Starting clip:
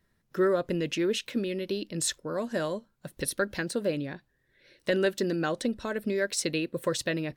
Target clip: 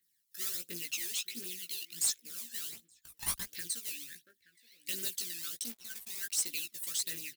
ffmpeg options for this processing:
-filter_complex "[0:a]acrusher=bits=3:mode=log:mix=0:aa=0.000001,asuperstop=centerf=830:order=4:qfactor=0.53,aderivative,asplit=2[s0][s1];[s1]adelay=874.6,volume=0.126,highshelf=f=4000:g=-19.7[s2];[s0][s2]amix=inputs=2:normalize=0,asettb=1/sr,asplit=3[s3][s4][s5];[s3]atrim=end=2.714[s6];[s4]atrim=start=2.71:end=3.52,asetpts=PTS-STARTPTS,afade=t=in:d=0.004:c=qsin,afade=t=out:st=0.806:d=0.004:c=qsin,aeval=exprs='0.168*(cos(1*acos(clip(val(0)/0.168,-1,1)))-cos(1*PI/2))+0.0266*(cos(3*acos(clip(val(0)/0.168,-1,1)))-cos(3*PI/2))+0.0119*(cos(6*acos(clip(val(0)/0.168,-1,1)))-cos(6*PI/2))+0.0335*(cos(8*acos(clip(val(0)/0.168,-1,1)))-cos(8*PI/2))':c=same[s7];[s5]atrim=start=3.516[s8];[s6][s7]acrossfade=d=0.004:c1=hsin:c2=qsin[s9];[s9][s8]acrossfade=d=0.004:c1=qsin:c2=hsin,aphaser=in_gain=1:out_gain=1:delay=1.2:decay=0.69:speed=1.4:type=triangular,highpass=50,asplit=3[s10][s11][s12];[s10]afade=t=out:st=5.56:d=0.02[s13];[s11]aeval=exprs='sgn(val(0))*max(abs(val(0))-0.00237,0)':c=same,afade=t=in:st=5.56:d=0.02,afade=t=out:st=6.48:d=0.02[s14];[s12]afade=t=in:st=6.48:d=0.02[s15];[s13][s14][s15]amix=inputs=3:normalize=0,asplit=2[s16][s17];[s17]adelay=17,volume=0.631[s18];[s16][s18]amix=inputs=2:normalize=0,asoftclip=type=tanh:threshold=0.0596"

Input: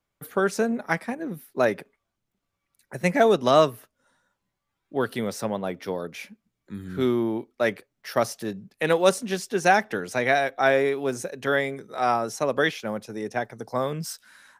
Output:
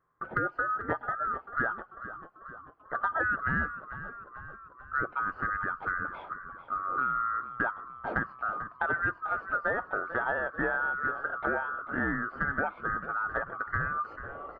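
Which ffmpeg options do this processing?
-filter_complex "[0:a]afftfilt=real='real(if(lt(b,960),b+48*(1-2*mod(floor(b/48),2)),b),0)':imag='imag(if(lt(b,960),b+48*(1-2*mod(floor(b/48),2)),b),0)':win_size=2048:overlap=0.75,lowpass=f=1500:w=0.5412,lowpass=f=1500:w=1.3066,acompressor=threshold=0.0141:ratio=4,asplit=2[s0][s1];[s1]asplit=7[s2][s3][s4][s5][s6][s7][s8];[s2]adelay=442,afreqshift=-42,volume=0.237[s9];[s3]adelay=884,afreqshift=-84,volume=0.145[s10];[s4]adelay=1326,afreqshift=-126,volume=0.0881[s11];[s5]adelay=1768,afreqshift=-168,volume=0.0537[s12];[s6]adelay=2210,afreqshift=-210,volume=0.0327[s13];[s7]adelay=2652,afreqshift=-252,volume=0.02[s14];[s8]adelay=3094,afreqshift=-294,volume=0.0122[s15];[s9][s10][s11][s12][s13][s14][s15]amix=inputs=7:normalize=0[s16];[s0][s16]amix=inputs=2:normalize=0,volume=2.37"

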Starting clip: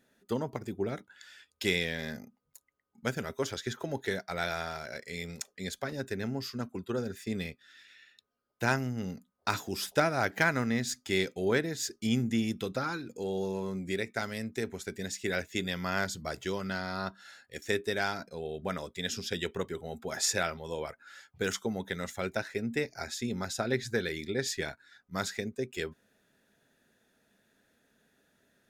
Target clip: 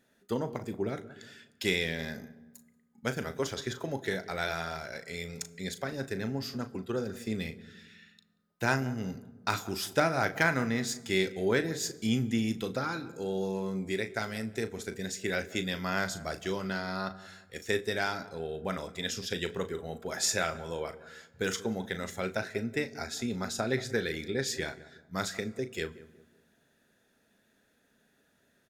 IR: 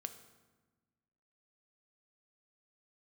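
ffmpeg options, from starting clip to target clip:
-filter_complex "[0:a]asplit=2[s0][s1];[s1]adelay=183,lowpass=f=1000:p=1,volume=0.158,asplit=2[s2][s3];[s3]adelay=183,lowpass=f=1000:p=1,volume=0.39,asplit=2[s4][s5];[s5]adelay=183,lowpass=f=1000:p=1,volume=0.39[s6];[s0][s2][s4][s6]amix=inputs=4:normalize=0,asplit=2[s7][s8];[1:a]atrim=start_sample=2205,adelay=37[s9];[s8][s9]afir=irnorm=-1:irlink=0,volume=0.422[s10];[s7][s10]amix=inputs=2:normalize=0"

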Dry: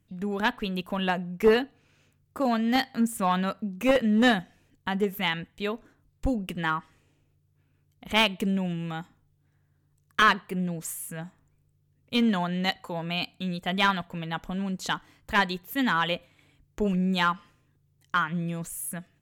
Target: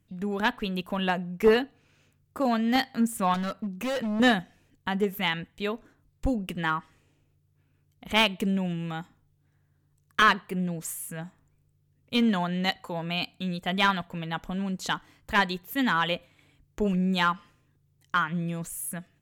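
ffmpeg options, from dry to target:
-filter_complex "[0:a]asettb=1/sr,asplit=3[s0][s1][s2];[s0]atrim=end=3.344[s3];[s1]atrim=start=3.34:end=4.2,asetpts=PTS-STARTPTS,afade=t=in:d=0.004:c=qsin,afade=t=out:st=0.856:d=0.004:c=qsin,asoftclip=type=hard:threshold=0.0447[s4];[s2]atrim=start=4.196[s5];[s3][s4]acrossfade=d=0.004:c1=hsin:c2=qsin[s6];[s6][s5]acrossfade=d=0.004:c1=qsin:c2=hsin"

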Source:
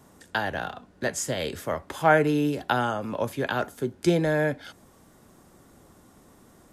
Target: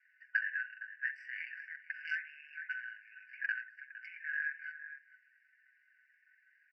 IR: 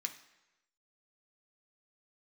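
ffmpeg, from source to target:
-filter_complex "[0:a]aeval=exprs='val(0)*sin(2*PI*23*n/s)':c=same,asplit=2[s0][s1];[1:a]atrim=start_sample=2205,lowpass=1800,adelay=54[s2];[s1][s2]afir=irnorm=-1:irlink=0,volume=0.211[s3];[s0][s3]amix=inputs=2:normalize=0,flanger=delay=0.9:depth=2.7:regen=-66:speed=0.73:shape=sinusoidal,lowpass=f=1800:w=0.5412,lowpass=f=1800:w=1.3066,equalizer=f=180:w=0.44:g=-9.5,aecho=1:1:460:0.1,asoftclip=type=tanh:threshold=0.112,acompressor=threshold=0.00891:ratio=3,aecho=1:1:7.3:0.72,afftfilt=real='re*eq(mod(floor(b*sr/1024/1500),2),1)':imag='im*eq(mod(floor(b*sr/1024/1500),2),1)':win_size=1024:overlap=0.75,volume=3.76"

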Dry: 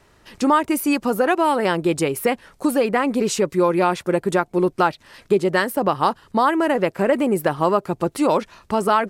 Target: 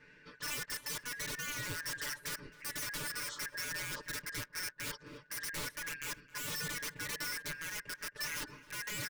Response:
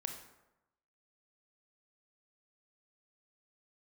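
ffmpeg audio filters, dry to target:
-filter_complex "[0:a]afftfilt=real='real(if(lt(b,272),68*(eq(floor(b/68),0)*1+eq(floor(b/68),1)*0+eq(floor(b/68),2)*3+eq(floor(b/68),3)*2)+mod(b,68),b),0)':imag='imag(if(lt(b,272),68*(eq(floor(b/68),0)*1+eq(floor(b/68),1)*0+eq(floor(b/68),2)*3+eq(floor(b/68),3)*2)+mod(b,68),b),0)':win_size=2048:overlap=0.75,lowpass=4200,areverse,acompressor=threshold=0.0355:ratio=10,areverse,adynamicequalizer=threshold=0.00447:dfrequency=2700:dqfactor=1.3:tfrequency=2700:tqfactor=1.3:attack=5:release=100:ratio=0.375:range=4:mode=cutabove:tftype=bell,dynaudnorm=f=210:g=7:m=1.41,aeval=exprs='(mod(29.9*val(0)+1,2)-1)/29.9':c=same,asuperstop=centerf=730:order=4:qfactor=3.7,lowshelf=f=480:g=6.5,aecho=1:1:6.8:0.92,asplit=2[s0][s1];[s1]adelay=265,lowpass=f=2300:p=1,volume=0.15,asplit=2[s2][s3];[s3]adelay=265,lowpass=f=2300:p=1,volume=0.38,asplit=2[s4][s5];[s5]adelay=265,lowpass=f=2300:p=1,volume=0.38[s6];[s0][s2][s4][s6]amix=inputs=4:normalize=0,volume=0.398"

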